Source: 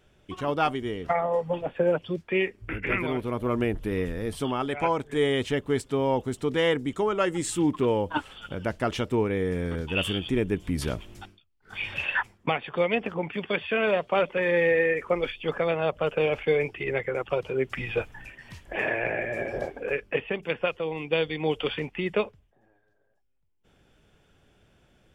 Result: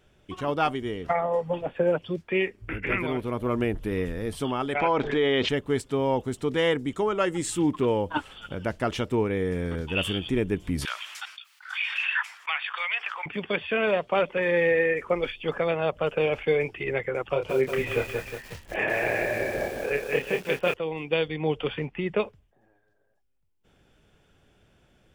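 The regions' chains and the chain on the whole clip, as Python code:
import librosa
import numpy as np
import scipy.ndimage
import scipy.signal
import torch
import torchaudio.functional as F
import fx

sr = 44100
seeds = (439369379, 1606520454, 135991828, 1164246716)

y = fx.chain(x, sr, fx.lowpass(hz=4700.0, slope=24),
    fx.peak_eq(hz=71.0, db=-11.5, octaves=2.0),
    fx.env_flatten(amount_pct=70), at=(4.75, 5.49))
y = fx.chain(y, sr, fx.highpass(hz=1200.0, slope=24),
    fx.high_shelf(hz=8000.0, db=-9.5),
    fx.env_flatten(amount_pct=50), at=(10.85, 13.26))
y = fx.chain(y, sr, fx.doubler(ms=28.0, db=-6),
    fx.echo_crushed(ms=181, feedback_pct=55, bits=7, wet_db=-4.0), at=(17.29, 20.74))
y = fx.chain(y, sr, fx.lowpass(hz=2400.0, slope=6),
    fx.peak_eq(hz=140.0, db=4.5, octaves=0.43), at=(21.28, 22.2))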